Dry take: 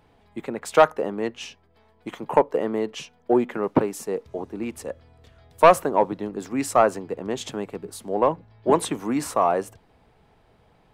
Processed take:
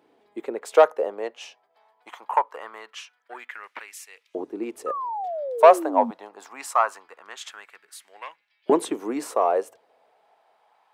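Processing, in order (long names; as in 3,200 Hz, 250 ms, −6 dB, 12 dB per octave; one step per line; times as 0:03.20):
auto-filter high-pass saw up 0.23 Hz 310–2,600 Hz
sound drawn into the spectrogram fall, 0:04.86–0:06.11, 220–1,300 Hz −25 dBFS
level −4.5 dB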